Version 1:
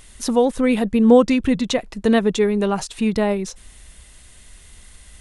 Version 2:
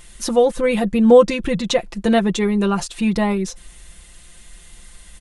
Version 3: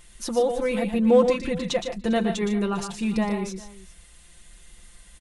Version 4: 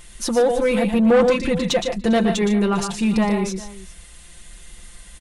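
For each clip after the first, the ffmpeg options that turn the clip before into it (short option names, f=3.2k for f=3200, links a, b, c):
-af "aecho=1:1:5.8:0.71"
-af "asoftclip=type=hard:threshold=-3dB,aecho=1:1:117|149|401:0.422|0.251|0.1,volume=-7.5dB"
-af "asoftclip=type=tanh:threshold=-18dB,volume=7.5dB"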